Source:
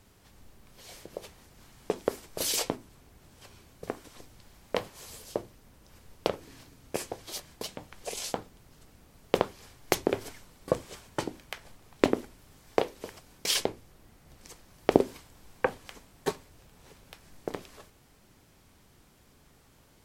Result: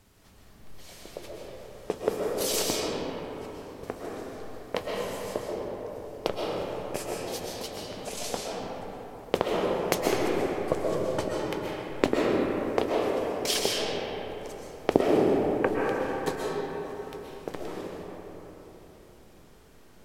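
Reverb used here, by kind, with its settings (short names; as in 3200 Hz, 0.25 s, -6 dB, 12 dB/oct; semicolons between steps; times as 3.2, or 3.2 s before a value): digital reverb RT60 4.1 s, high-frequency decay 0.4×, pre-delay 90 ms, DRR -4 dB; gain -1 dB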